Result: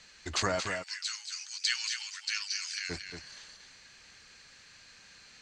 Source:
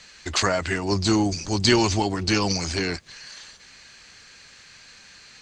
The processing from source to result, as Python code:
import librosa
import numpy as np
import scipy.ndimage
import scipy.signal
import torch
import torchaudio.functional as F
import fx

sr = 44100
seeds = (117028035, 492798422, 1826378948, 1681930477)

y = fx.steep_highpass(x, sr, hz=1500.0, slope=36, at=(0.59, 2.89), fade=0.02)
y = y + 10.0 ** (-7.0 / 20.0) * np.pad(y, (int(228 * sr / 1000.0), 0))[:len(y)]
y = F.gain(torch.from_numpy(y), -8.0).numpy()